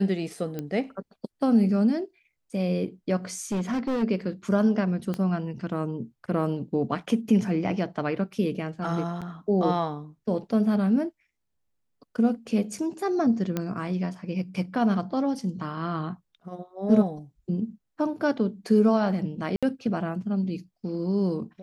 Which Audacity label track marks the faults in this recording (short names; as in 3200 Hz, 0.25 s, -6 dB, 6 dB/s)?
0.590000	0.590000	pop -19 dBFS
3.520000	4.040000	clipped -23.5 dBFS
5.140000	5.140000	pop -18 dBFS
9.210000	9.220000	gap 7 ms
13.570000	13.570000	pop -14 dBFS
19.560000	19.630000	gap 66 ms